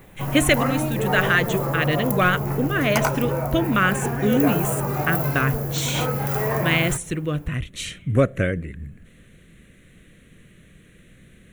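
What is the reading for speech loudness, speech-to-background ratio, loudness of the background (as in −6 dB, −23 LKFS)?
−23.0 LKFS, 1.5 dB, −24.5 LKFS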